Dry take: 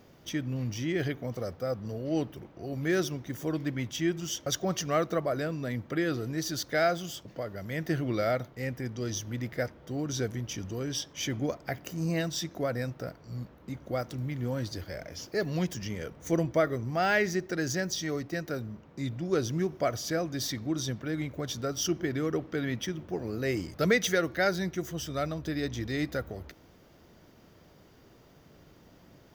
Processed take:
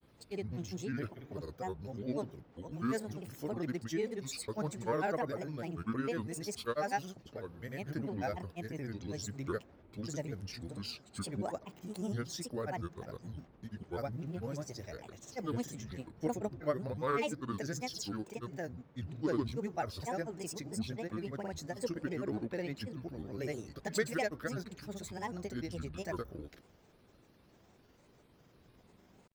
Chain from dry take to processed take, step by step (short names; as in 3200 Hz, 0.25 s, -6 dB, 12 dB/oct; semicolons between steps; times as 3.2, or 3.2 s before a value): grains, pitch spread up and down by 7 st; dynamic EQ 3000 Hz, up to -6 dB, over -52 dBFS, Q 1.6; gain -6 dB